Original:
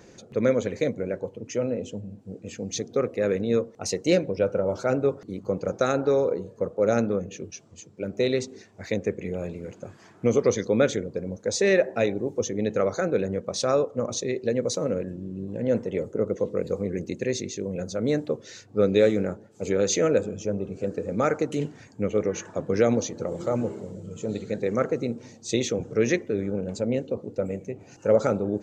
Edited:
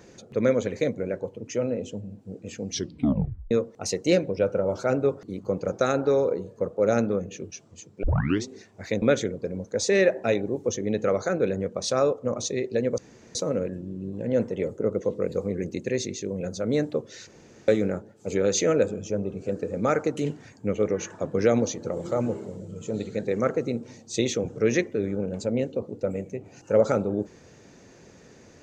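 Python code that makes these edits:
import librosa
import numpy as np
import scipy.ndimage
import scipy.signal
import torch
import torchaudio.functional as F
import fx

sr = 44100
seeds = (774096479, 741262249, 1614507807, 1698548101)

y = fx.edit(x, sr, fx.tape_stop(start_s=2.69, length_s=0.82),
    fx.tape_start(start_s=8.03, length_s=0.42),
    fx.cut(start_s=9.02, length_s=1.72),
    fx.insert_room_tone(at_s=14.7, length_s=0.37),
    fx.room_tone_fill(start_s=18.62, length_s=0.41), tone=tone)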